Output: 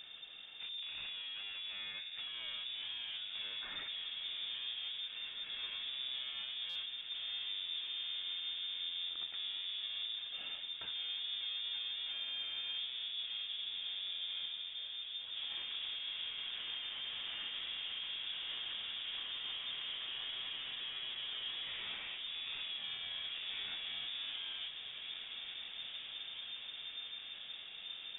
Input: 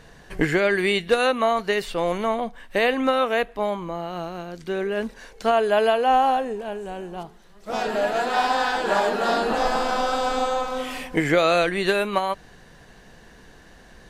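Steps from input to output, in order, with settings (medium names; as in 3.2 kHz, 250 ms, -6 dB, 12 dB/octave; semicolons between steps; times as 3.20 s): compression 3:1, threshold -27 dBFS, peak gain reduction 10.5 dB; peak limiter -22 dBFS, peak gain reduction 10 dB; saturation -39 dBFS, distortion -6 dB; echo that smears into a reverb 936 ms, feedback 60%, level -6 dB; reverberation RT60 4.1 s, pre-delay 46 ms, DRR 9 dB; speed mistake 15 ips tape played at 7.5 ips; frequency inversion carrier 3.6 kHz; buffer glitch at 6.69 s, samples 256, times 10; trim -4.5 dB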